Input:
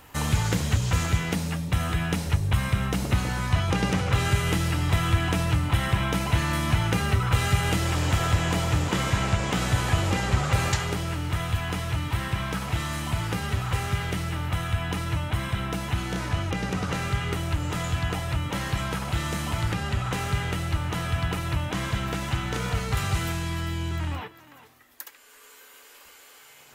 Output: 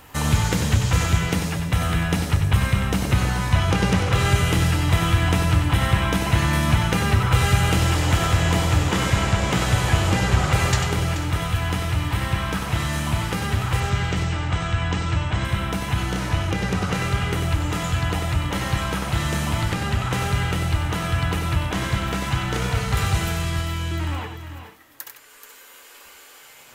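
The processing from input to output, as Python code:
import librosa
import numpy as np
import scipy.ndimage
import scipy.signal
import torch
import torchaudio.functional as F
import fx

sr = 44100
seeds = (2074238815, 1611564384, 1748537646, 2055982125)

p1 = fx.brickwall_lowpass(x, sr, high_hz=8400.0, at=(13.8, 15.45))
p2 = p1 + fx.echo_multitap(p1, sr, ms=(95, 431, 489), db=(-7.5, -11.5, -20.0), dry=0)
y = F.gain(torch.from_numpy(p2), 3.5).numpy()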